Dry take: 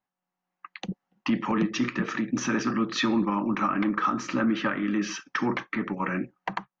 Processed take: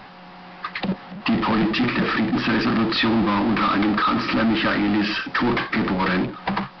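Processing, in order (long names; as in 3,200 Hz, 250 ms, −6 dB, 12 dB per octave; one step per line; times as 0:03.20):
power curve on the samples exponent 0.35
downsampling to 11,025 Hz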